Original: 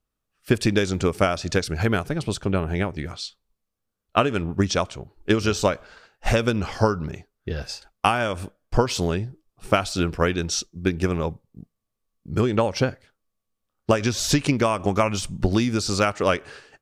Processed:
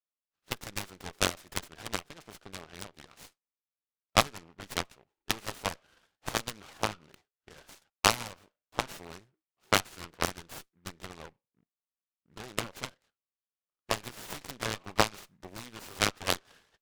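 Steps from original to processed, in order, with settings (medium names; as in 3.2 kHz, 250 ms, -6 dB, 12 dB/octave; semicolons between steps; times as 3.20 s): band-pass filter 2.1 kHz, Q 0.58; Chebyshev shaper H 3 -23 dB, 5 -37 dB, 7 -17 dB, 8 -24 dB, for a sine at -4 dBFS; delay time shaken by noise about 1.4 kHz, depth 0.1 ms; trim +2.5 dB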